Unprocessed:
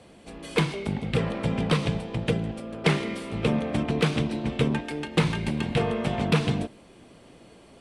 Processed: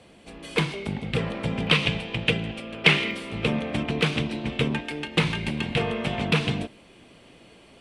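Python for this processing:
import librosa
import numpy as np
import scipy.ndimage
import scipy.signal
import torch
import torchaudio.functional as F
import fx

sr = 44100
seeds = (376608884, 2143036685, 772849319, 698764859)

y = fx.peak_eq(x, sr, hz=2700.0, db=fx.steps((0.0, 4.5), (1.67, 15.0), (3.11, 7.5)), octaves=1.2)
y = y * librosa.db_to_amplitude(-1.5)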